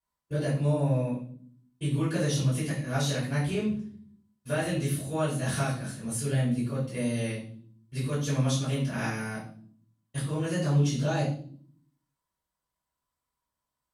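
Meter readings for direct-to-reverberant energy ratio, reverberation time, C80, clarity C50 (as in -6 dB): -11.5 dB, no single decay rate, 9.5 dB, 5.5 dB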